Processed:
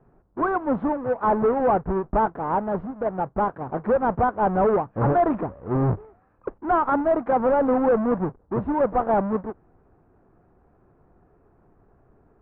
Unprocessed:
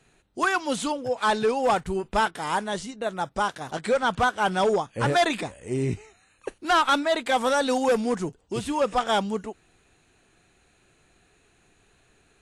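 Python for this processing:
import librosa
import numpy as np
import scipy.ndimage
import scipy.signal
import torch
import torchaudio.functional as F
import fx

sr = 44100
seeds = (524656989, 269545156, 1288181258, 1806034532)

y = fx.halfwave_hold(x, sr)
y = scipy.signal.sosfilt(scipy.signal.butter(4, 1200.0, 'lowpass', fs=sr, output='sos'), y)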